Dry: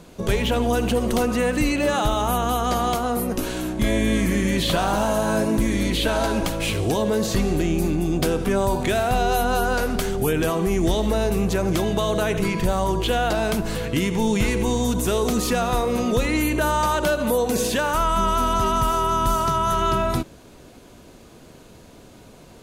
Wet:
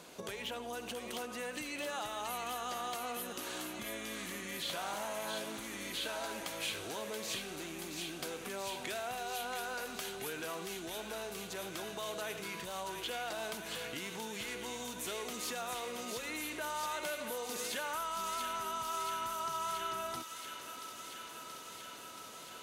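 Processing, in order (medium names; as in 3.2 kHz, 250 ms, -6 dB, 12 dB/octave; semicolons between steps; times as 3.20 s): compression 6:1, threshold -32 dBFS, peak gain reduction 15 dB; high-pass 820 Hz 6 dB/octave; feedback echo behind a high-pass 679 ms, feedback 80%, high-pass 1.8 kHz, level -5 dB; trim -1.5 dB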